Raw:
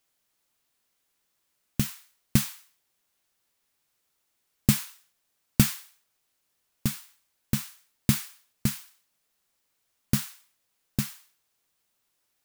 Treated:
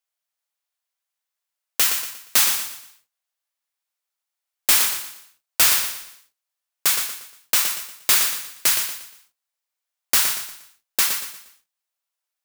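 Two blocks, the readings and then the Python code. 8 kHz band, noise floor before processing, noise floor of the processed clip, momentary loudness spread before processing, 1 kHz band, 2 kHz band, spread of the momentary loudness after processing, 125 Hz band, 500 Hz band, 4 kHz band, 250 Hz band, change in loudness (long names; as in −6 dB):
+14.5 dB, −76 dBFS, −85 dBFS, 16 LU, +14.5 dB, +14.0 dB, 15 LU, below −20 dB, +6.0 dB, +14.5 dB, −16.5 dB, +10.0 dB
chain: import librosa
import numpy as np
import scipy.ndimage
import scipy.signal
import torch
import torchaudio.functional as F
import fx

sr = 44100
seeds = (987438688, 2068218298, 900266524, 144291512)

p1 = scipy.signal.sosfilt(scipy.signal.butter(4, 560.0, 'highpass', fs=sr, output='sos'), x)
p2 = fx.leveller(p1, sr, passes=5)
y = p2 + fx.echo_feedback(p2, sr, ms=118, feedback_pct=36, wet_db=-7, dry=0)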